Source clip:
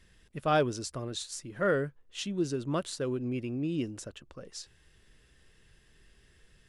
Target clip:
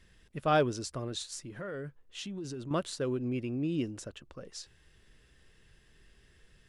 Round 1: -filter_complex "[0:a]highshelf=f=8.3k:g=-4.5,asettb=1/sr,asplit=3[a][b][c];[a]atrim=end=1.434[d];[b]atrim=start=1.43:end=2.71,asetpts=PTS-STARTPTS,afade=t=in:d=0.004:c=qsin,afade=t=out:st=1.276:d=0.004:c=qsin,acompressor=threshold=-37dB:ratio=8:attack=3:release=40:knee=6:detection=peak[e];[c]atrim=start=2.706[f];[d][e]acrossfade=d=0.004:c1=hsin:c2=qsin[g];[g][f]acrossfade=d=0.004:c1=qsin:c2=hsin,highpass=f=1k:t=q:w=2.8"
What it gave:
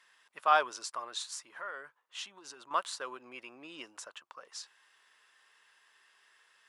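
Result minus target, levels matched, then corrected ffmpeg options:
1000 Hz band +5.5 dB
-filter_complex "[0:a]highshelf=f=8.3k:g=-4.5,asettb=1/sr,asplit=3[a][b][c];[a]atrim=end=1.434[d];[b]atrim=start=1.43:end=2.71,asetpts=PTS-STARTPTS,afade=t=in:d=0.004:c=qsin,afade=t=out:st=1.276:d=0.004:c=qsin,acompressor=threshold=-37dB:ratio=8:attack=3:release=40:knee=6:detection=peak[e];[c]atrim=start=2.706[f];[d][e]acrossfade=d=0.004:c1=hsin:c2=qsin[g];[g][f]acrossfade=d=0.004:c1=qsin:c2=hsin"

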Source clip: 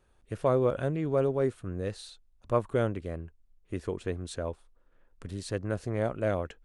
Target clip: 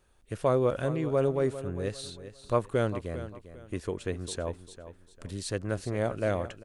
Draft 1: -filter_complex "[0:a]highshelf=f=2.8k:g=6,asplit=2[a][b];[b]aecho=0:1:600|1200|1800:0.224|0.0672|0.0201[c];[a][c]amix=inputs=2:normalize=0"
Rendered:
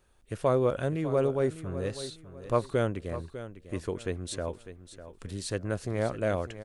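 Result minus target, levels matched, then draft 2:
echo 0.201 s late
-filter_complex "[0:a]highshelf=f=2.8k:g=6,asplit=2[a][b];[b]aecho=0:1:399|798|1197:0.224|0.0672|0.0201[c];[a][c]amix=inputs=2:normalize=0"

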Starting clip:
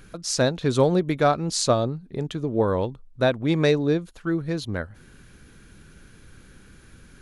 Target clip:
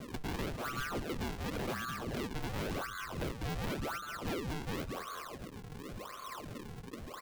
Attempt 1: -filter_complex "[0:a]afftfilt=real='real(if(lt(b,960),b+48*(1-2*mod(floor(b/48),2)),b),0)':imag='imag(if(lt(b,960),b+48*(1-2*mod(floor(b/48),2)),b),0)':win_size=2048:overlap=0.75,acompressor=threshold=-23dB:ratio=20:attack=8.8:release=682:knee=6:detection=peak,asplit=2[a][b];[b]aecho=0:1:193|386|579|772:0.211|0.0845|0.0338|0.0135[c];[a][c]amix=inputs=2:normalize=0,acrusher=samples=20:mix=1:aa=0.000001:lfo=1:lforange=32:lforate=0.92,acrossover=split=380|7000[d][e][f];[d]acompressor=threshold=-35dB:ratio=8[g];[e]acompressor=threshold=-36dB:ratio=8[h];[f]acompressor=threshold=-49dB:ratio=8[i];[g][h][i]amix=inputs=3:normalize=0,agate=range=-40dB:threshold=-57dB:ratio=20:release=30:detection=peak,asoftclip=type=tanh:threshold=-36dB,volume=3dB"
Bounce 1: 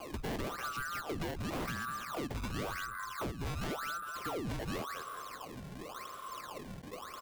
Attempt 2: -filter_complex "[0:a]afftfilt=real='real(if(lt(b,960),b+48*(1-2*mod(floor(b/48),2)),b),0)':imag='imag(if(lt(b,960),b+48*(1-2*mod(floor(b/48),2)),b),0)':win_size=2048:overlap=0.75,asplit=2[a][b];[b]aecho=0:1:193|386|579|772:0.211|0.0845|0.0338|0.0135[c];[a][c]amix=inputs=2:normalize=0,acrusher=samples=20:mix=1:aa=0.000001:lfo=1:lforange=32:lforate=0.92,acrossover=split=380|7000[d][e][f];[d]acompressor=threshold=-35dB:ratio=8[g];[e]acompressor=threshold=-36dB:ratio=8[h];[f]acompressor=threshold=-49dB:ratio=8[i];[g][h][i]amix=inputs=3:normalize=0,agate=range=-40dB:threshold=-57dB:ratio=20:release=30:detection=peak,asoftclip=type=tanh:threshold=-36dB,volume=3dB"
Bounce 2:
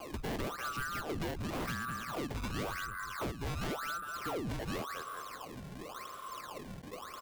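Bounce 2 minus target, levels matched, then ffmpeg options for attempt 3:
decimation with a swept rate: distortion -8 dB
-filter_complex "[0:a]afftfilt=real='real(if(lt(b,960),b+48*(1-2*mod(floor(b/48),2)),b),0)':imag='imag(if(lt(b,960),b+48*(1-2*mod(floor(b/48),2)),b),0)':win_size=2048:overlap=0.75,asplit=2[a][b];[b]aecho=0:1:193|386|579|772:0.211|0.0845|0.0338|0.0135[c];[a][c]amix=inputs=2:normalize=0,acrusher=samples=41:mix=1:aa=0.000001:lfo=1:lforange=65.6:lforate=0.92,acrossover=split=380|7000[d][e][f];[d]acompressor=threshold=-35dB:ratio=8[g];[e]acompressor=threshold=-36dB:ratio=8[h];[f]acompressor=threshold=-49dB:ratio=8[i];[g][h][i]amix=inputs=3:normalize=0,agate=range=-40dB:threshold=-57dB:ratio=20:release=30:detection=peak,asoftclip=type=tanh:threshold=-36dB,volume=3dB"

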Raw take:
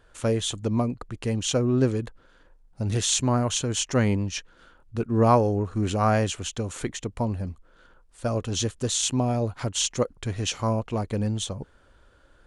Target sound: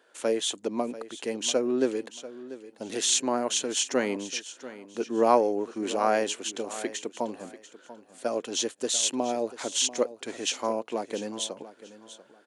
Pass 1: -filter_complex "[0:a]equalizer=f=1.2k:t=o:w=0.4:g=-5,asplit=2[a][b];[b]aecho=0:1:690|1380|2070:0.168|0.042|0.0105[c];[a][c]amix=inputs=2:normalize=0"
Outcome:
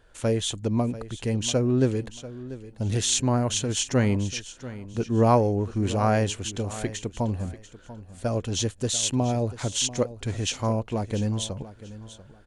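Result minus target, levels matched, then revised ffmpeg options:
250 Hz band +3.0 dB
-filter_complex "[0:a]highpass=f=280:w=0.5412,highpass=f=280:w=1.3066,equalizer=f=1.2k:t=o:w=0.4:g=-5,asplit=2[a][b];[b]aecho=0:1:690|1380|2070:0.168|0.042|0.0105[c];[a][c]amix=inputs=2:normalize=0"

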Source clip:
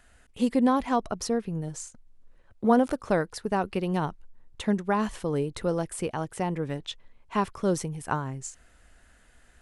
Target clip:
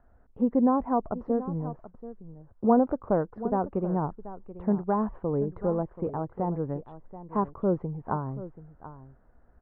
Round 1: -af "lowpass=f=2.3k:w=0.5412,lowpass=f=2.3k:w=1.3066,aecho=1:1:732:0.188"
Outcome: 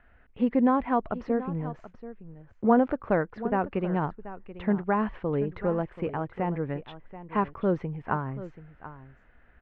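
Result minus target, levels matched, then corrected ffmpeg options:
2000 Hz band +12.0 dB
-af "lowpass=f=1.1k:w=0.5412,lowpass=f=1.1k:w=1.3066,aecho=1:1:732:0.188"

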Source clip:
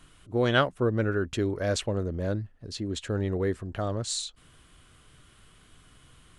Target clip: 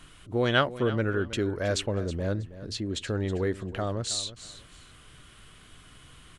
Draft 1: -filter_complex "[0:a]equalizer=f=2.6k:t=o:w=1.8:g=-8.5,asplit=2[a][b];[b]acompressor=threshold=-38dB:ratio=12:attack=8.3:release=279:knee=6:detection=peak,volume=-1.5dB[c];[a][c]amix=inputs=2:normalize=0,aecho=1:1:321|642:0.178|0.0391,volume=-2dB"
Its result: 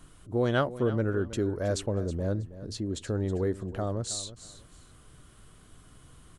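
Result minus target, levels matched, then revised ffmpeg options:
2000 Hz band -5.5 dB
-filter_complex "[0:a]equalizer=f=2.6k:t=o:w=1.8:g=3,asplit=2[a][b];[b]acompressor=threshold=-38dB:ratio=12:attack=8.3:release=279:knee=6:detection=peak,volume=-1.5dB[c];[a][c]amix=inputs=2:normalize=0,aecho=1:1:321|642:0.178|0.0391,volume=-2dB"

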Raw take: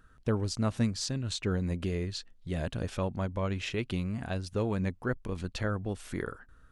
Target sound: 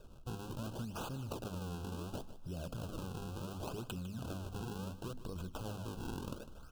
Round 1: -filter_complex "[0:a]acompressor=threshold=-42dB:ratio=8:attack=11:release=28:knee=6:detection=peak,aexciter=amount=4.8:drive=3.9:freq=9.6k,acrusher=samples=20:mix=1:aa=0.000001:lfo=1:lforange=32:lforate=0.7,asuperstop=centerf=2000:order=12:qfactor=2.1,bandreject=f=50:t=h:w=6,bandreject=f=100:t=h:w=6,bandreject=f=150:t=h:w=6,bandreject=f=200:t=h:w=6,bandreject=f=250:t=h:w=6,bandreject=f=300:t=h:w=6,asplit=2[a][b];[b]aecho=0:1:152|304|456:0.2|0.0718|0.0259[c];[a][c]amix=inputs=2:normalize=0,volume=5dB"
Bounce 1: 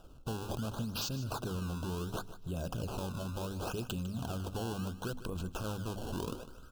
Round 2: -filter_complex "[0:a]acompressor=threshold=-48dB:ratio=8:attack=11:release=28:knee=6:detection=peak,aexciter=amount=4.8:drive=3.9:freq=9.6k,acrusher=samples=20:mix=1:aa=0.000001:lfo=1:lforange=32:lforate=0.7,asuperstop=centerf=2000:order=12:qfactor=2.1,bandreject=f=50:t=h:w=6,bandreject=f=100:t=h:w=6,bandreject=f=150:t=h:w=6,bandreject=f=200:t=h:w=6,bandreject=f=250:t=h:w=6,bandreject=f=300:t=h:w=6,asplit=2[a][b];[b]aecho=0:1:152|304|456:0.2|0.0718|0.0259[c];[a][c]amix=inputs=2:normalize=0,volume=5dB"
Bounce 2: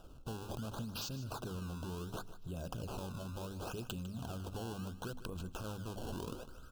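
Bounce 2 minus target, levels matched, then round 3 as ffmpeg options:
decimation with a swept rate: distortion -4 dB
-filter_complex "[0:a]acompressor=threshold=-48dB:ratio=8:attack=11:release=28:knee=6:detection=peak,aexciter=amount=4.8:drive=3.9:freq=9.6k,acrusher=samples=41:mix=1:aa=0.000001:lfo=1:lforange=65.6:lforate=0.7,asuperstop=centerf=2000:order=12:qfactor=2.1,bandreject=f=50:t=h:w=6,bandreject=f=100:t=h:w=6,bandreject=f=150:t=h:w=6,bandreject=f=200:t=h:w=6,bandreject=f=250:t=h:w=6,bandreject=f=300:t=h:w=6,asplit=2[a][b];[b]aecho=0:1:152|304|456:0.2|0.0718|0.0259[c];[a][c]amix=inputs=2:normalize=0,volume=5dB"

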